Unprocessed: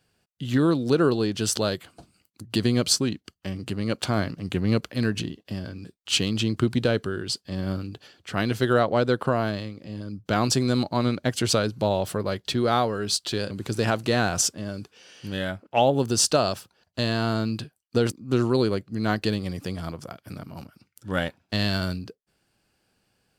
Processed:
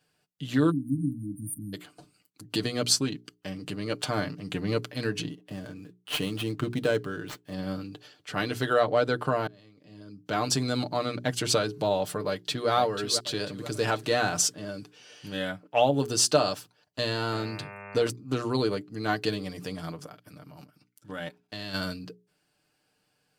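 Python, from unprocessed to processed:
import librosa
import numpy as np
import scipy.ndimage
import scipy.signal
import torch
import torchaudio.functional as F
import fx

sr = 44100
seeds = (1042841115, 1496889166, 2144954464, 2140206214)

y = fx.spec_erase(x, sr, start_s=0.7, length_s=1.04, low_hz=320.0, high_hz=8800.0)
y = fx.median_filter(y, sr, points=9, at=(5.3, 7.54))
y = fx.echo_throw(y, sr, start_s=12.27, length_s=0.43, ms=490, feedback_pct=45, wet_db=-8.5)
y = fx.dmg_buzz(y, sr, base_hz=100.0, harmonics=27, level_db=-39.0, tilt_db=-3, odd_only=False, at=(17.31, 18.03), fade=0.02)
y = fx.level_steps(y, sr, step_db=11, at=(20.07, 21.73), fade=0.02)
y = fx.edit(y, sr, fx.fade_in_span(start_s=9.47, length_s=1.14), tone=tone)
y = fx.low_shelf(y, sr, hz=88.0, db=-11.0)
y = fx.hum_notches(y, sr, base_hz=60, count=7)
y = y + 0.6 * np.pad(y, (int(6.7 * sr / 1000.0), 0))[:len(y)]
y = F.gain(torch.from_numpy(y), -3.0).numpy()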